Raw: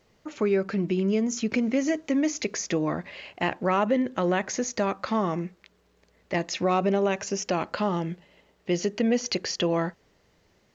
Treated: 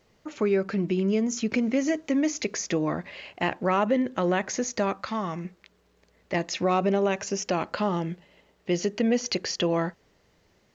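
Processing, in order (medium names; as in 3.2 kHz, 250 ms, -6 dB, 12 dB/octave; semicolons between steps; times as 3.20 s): 5.01–5.45 s: peaking EQ 390 Hz -8 dB 2 oct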